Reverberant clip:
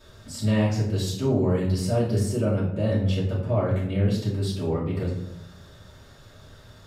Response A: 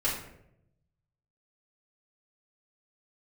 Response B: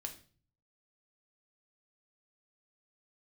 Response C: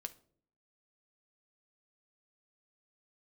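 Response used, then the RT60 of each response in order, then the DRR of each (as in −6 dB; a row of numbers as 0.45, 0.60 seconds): A; 0.75, 0.40, 0.55 seconds; −9.0, 3.5, 7.0 decibels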